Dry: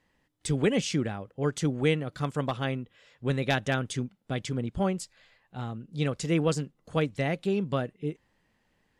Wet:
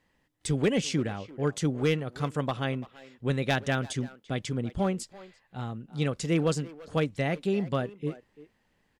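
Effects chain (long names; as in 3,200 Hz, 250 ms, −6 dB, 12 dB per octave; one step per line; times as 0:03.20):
gain into a clipping stage and back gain 17.5 dB
far-end echo of a speakerphone 340 ms, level −15 dB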